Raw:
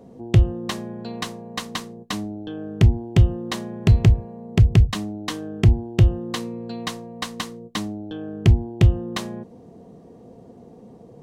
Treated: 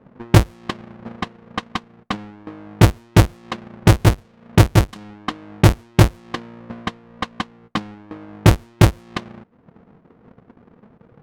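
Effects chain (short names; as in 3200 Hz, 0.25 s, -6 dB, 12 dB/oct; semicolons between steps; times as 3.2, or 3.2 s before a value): half-waves squared off; transient shaper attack +12 dB, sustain -9 dB; low-pass opened by the level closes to 1400 Hz, open at -2.5 dBFS; gain -9.5 dB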